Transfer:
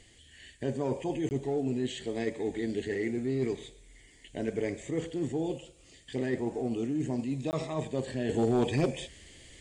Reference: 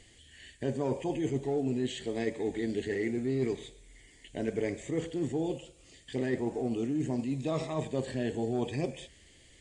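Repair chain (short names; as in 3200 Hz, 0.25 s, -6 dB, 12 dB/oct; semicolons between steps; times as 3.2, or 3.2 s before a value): clip repair -19.5 dBFS; interpolate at 1.29/7.51, 19 ms; gain 0 dB, from 8.29 s -6 dB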